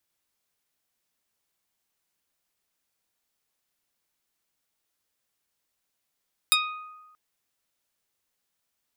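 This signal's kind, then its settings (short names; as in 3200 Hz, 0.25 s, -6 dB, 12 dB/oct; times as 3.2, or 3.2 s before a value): plucked string D#6, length 0.63 s, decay 1.26 s, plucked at 0.19, medium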